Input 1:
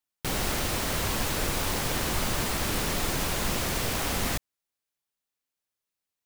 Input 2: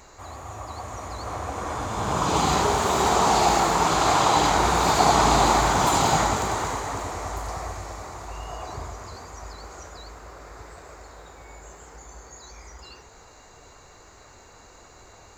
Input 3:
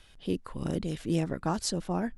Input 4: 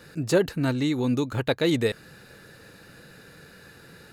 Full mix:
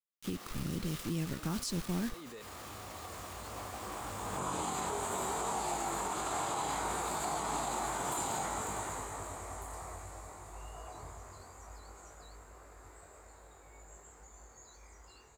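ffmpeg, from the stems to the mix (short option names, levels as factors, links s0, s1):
-filter_complex "[0:a]equalizer=f=1200:t=o:w=0.22:g=9.5,flanger=delay=17.5:depth=6.9:speed=0.67,volume=0.237[s0];[1:a]highshelf=f=6900:t=q:w=3:g=6.5,acrossover=split=160|3000[s1][s2][s3];[s1]acompressor=threshold=0.02:ratio=6[s4];[s4][s2][s3]amix=inputs=3:normalize=0,flanger=delay=19.5:depth=3.1:speed=0.6,adelay=2250,volume=0.335[s5];[2:a]acrusher=bits=6:mix=0:aa=0.000001,equalizer=f=700:t=o:w=1.7:g=-13.5,volume=1.06,asplit=2[s6][s7];[3:a]adelay=500,volume=0.299[s8];[s7]apad=whole_len=203901[s9];[s8][s9]sidechaincompress=threshold=0.00224:ratio=8:attack=16:release=111[s10];[s0][s10]amix=inputs=2:normalize=0,highpass=200,alimiter=level_in=5.96:limit=0.0631:level=0:latency=1:release=36,volume=0.168,volume=1[s11];[s5][s6][s11]amix=inputs=3:normalize=0,alimiter=level_in=1.26:limit=0.0631:level=0:latency=1:release=94,volume=0.794"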